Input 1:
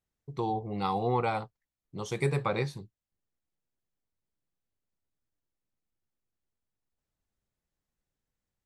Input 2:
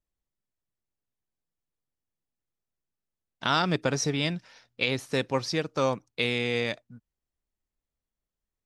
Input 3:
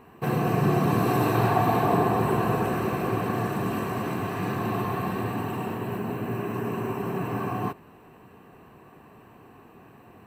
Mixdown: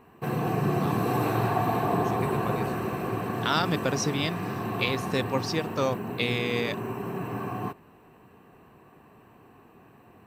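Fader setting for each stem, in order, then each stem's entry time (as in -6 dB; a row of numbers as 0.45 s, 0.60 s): -7.5 dB, -1.0 dB, -3.5 dB; 0.00 s, 0.00 s, 0.00 s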